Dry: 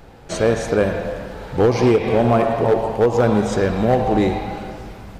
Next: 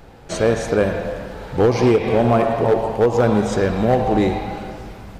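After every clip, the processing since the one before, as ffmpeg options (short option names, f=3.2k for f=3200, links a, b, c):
-af anull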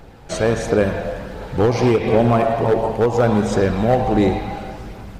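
-af "aphaser=in_gain=1:out_gain=1:delay=1.6:decay=0.23:speed=1.4:type=triangular"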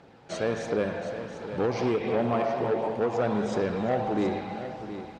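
-af "asoftclip=type=tanh:threshold=-10.5dB,highpass=150,lowpass=5.9k,aecho=1:1:721:0.282,volume=-8dB"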